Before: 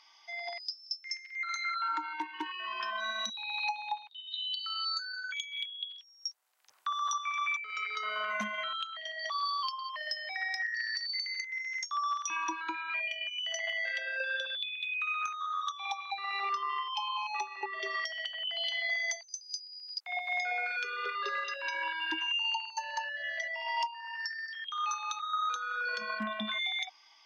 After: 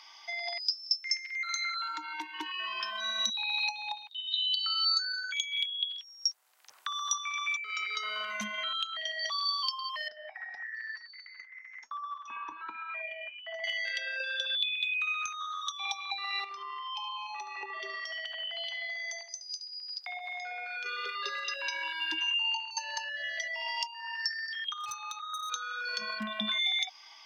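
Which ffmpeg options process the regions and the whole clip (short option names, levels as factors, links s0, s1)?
-filter_complex "[0:a]asettb=1/sr,asplit=3[s0][s1][s2];[s0]atrim=end=10.084[s3];[s1]atrim=start=10.08:end=13.64,asetpts=PTS-STARTPTS,afade=t=in:d=0.004:c=qsin,afade=t=out:st=3.556:d=0.004:c=qsin,lowpass=1300,aecho=1:1:4.6:0.84,atrim=end_sample=156996,flanger=delay=3.6:depth=4.9:regen=75:speed=1.1:shape=triangular[s4];[s2]atrim=start=13.636[s5];[s3][s4]acrossfade=d=0.004:c1=hsin:c2=qsin[s6];[s6][s5]acrossfade=d=0.004:c1=qsin:c2=hsin,asettb=1/sr,asplit=3[s7][s8][s9];[s7]atrim=end=16.444[s10];[s8]atrim=start=16.44:end=20.86,asetpts=PTS-STARTPTS,afade=t=in:d=0.004:c=qsin,afade=t=out:st=4.416:d=0.004:c=qsin,highshelf=f=5600:g=-7,acompressor=threshold=0.00708:ratio=3:attack=3.2:release=140:knee=1:detection=peak,asplit=2[s11][s12];[s12]adelay=71,lowpass=f=4000:p=1,volume=0.355,asplit=2[s13][s14];[s14]adelay=71,lowpass=f=4000:p=1,volume=0.38,asplit=2[s15][s16];[s16]adelay=71,lowpass=f=4000:p=1,volume=0.38,asplit=2[s17][s18];[s18]adelay=71,lowpass=f=4000:p=1,volume=0.38[s19];[s11][s13][s15][s17][s19]amix=inputs=5:normalize=0,atrim=end_sample=194922[s20];[s9]atrim=start=20.856[s21];[s10][s20]acrossfade=d=0.004:c1=hsin:c2=qsin[s22];[s22][s21]acrossfade=d=0.004:c1=qsin:c2=hsin,asettb=1/sr,asplit=3[s23][s24][s25];[s23]atrim=end=22.304[s26];[s24]atrim=start=22.3:end=22.71,asetpts=PTS-STARTPTS,afade=t=in:d=0.004:c=qsin,afade=t=out:st=0.406:d=0.004:c=qsin,lowpass=f=2500:p=1,asplit=2[s27][s28];[s28]adelay=21,volume=0.562[s29];[s27][s29]amix=inputs=2:normalize=0,atrim=end_sample=18081[s30];[s25]atrim=start=22.706[s31];[s26][s30]acrossfade=d=0.004:c1=hsin:c2=qsin[s32];[s32][s31]acrossfade=d=0.004:c1=qsin:c2=hsin,asettb=1/sr,asplit=3[s33][s34][s35];[s33]atrim=end=24.734[s36];[s34]atrim=start=24.73:end=25.52,asetpts=PTS-STARTPTS,afade=t=in:d=0.004:c=qsin,afade=t=out:st=0.786:d=0.004:c=qsin,agate=range=0.355:threshold=0.0251:ratio=16:release=100:detection=peak,volume=63.1,asoftclip=hard,volume=0.0158[s37];[s35]atrim=start=25.516[s38];[s36][s37]acrossfade=d=0.004:c1=hsin:c2=qsin[s39];[s39][s38]acrossfade=d=0.004:c1=qsin:c2=hsin,lowshelf=f=220:g=-5.5,acrossover=split=190|3000[s40][s41][s42];[s41]acompressor=threshold=0.00501:ratio=6[s43];[s40][s43][s42]amix=inputs=3:normalize=0,volume=2.51"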